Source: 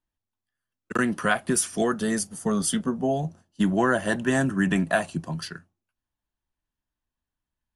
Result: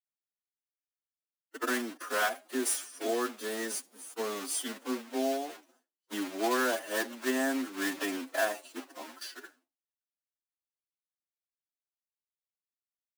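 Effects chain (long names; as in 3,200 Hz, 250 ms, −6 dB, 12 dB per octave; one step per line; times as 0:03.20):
one scale factor per block 3 bits
noise gate with hold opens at −37 dBFS
elliptic high-pass filter 260 Hz, stop band 40 dB
phase-vocoder stretch with locked phases 1.7×
level −6.5 dB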